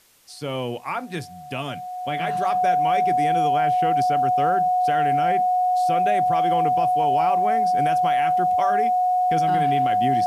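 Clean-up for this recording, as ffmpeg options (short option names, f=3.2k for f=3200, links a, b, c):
-af "bandreject=f=730:w=30,agate=range=-21dB:threshold=-25dB"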